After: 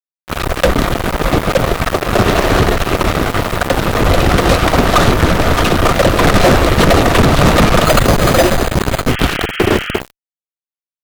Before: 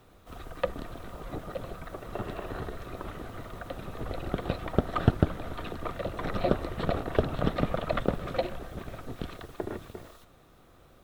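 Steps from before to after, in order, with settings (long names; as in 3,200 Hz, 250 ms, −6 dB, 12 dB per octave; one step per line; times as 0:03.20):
0:07.85–0:09.19: bad sample-rate conversion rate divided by 8×, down none, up hold
fuzz pedal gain 39 dB, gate −41 dBFS
0:09.07–0:10.00: sound drawn into the spectrogram noise 1,200–3,300 Hz −32 dBFS
level +7.5 dB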